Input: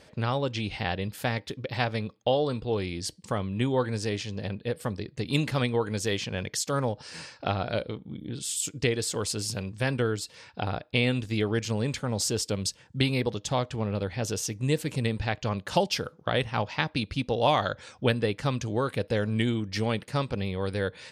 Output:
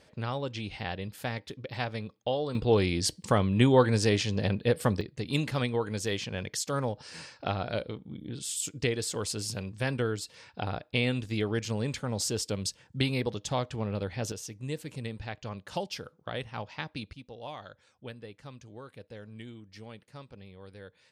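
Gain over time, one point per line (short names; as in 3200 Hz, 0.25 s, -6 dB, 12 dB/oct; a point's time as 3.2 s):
-5.5 dB
from 2.55 s +5 dB
from 5.01 s -3 dB
from 14.32 s -9.5 dB
from 17.13 s -18.5 dB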